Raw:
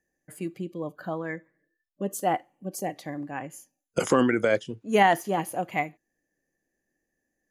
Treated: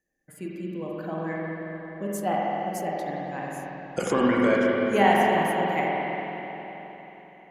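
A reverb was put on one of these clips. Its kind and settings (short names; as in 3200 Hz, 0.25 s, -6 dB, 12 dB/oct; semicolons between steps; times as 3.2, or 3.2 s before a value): spring tank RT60 3.9 s, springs 44/49 ms, chirp 45 ms, DRR -4.5 dB; gain -3.5 dB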